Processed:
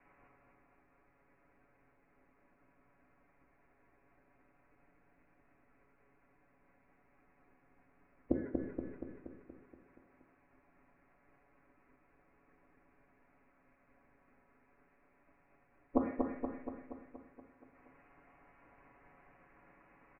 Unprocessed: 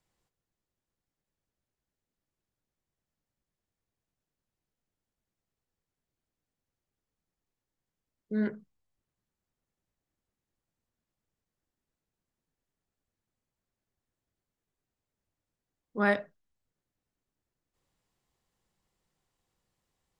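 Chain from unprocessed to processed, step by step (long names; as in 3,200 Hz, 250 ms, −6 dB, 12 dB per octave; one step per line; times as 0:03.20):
ceiling on every frequency bin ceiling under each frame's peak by 16 dB
Butterworth low-pass 2,500 Hz 96 dB per octave
comb filter 7.1 ms, depth 96%
downward compressor 6 to 1, threshold −34 dBFS, peak gain reduction 14.5 dB
gate with flip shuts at −32 dBFS, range −30 dB
repeating echo 237 ms, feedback 59%, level −3.5 dB
on a send at −5 dB: convolution reverb RT60 0.75 s, pre-delay 3 ms
on the sum: level +13.5 dB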